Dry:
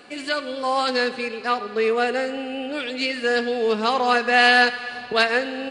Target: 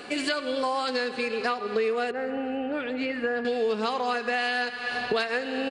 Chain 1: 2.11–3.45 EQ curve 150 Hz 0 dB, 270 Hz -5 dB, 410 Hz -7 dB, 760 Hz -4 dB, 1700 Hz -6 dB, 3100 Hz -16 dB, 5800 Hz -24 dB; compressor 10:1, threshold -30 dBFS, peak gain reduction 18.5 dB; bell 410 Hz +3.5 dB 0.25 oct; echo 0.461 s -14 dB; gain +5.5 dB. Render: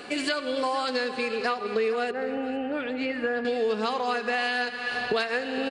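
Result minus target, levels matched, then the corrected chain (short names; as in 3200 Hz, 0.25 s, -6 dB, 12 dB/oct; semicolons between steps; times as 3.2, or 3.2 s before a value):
echo-to-direct +10.5 dB
2.11–3.45 EQ curve 150 Hz 0 dB, 270 Hz -5 dB, 410 Hz -7 dB, 760 Hz -4 dB, 1700 Hz -6 dB, 3100 Hz -16 dB, 5800 Hz -24 dB; compressor 10:1, threshold -30 dBFS, peak gain reduction 18.5 dB; bell 410 Hz +3.5 dB 0.25 oct; echo 0.461 s -24.5 dB; gain +5.5 dB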